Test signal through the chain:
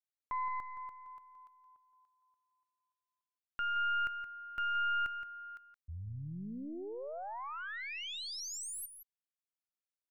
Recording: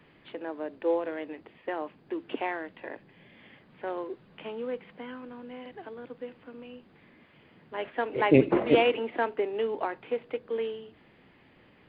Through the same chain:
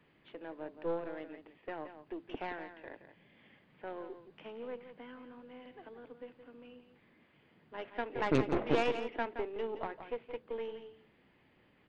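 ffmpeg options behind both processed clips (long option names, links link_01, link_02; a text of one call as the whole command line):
ffmpeg -i in.wav -af "aeval=exprs='0.473*(cos(1*acos(clip(val(0)/0.473,-1,1)))-cos(1*PI/2))+0.0531*(cos(4*acos(clip(val(0)/0.473,-1,1)))-cos(4*PI/2))+0.0944*(cos(6*acos(clip(val(0)/0.473,-1,1)))-cos(6*PI/2))':channel_layout=same,aecho=1:1:171:0.299,volume=-9dB" out.wav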